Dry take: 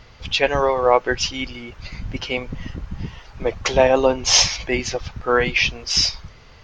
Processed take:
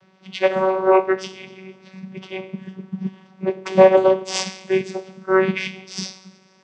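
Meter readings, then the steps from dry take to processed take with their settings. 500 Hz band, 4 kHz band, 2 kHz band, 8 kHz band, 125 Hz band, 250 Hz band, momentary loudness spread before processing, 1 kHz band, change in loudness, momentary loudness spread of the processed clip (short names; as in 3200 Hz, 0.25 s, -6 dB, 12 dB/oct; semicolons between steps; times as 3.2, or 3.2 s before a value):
+2.5 dB, -11.5 dB, -5.0 dB, -12.5 dB, -2.5 dB, +3.5 dB, 19 LU, -0.5 dB, -0.5 dB, 21 LU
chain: two-slope reverb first 0.61 s, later 2.4 s, DRR 4.5 dB; vocoder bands 16, saw 189 Hz; upward expander 1.5:1, over -28 dBFS; gain +2.5 dB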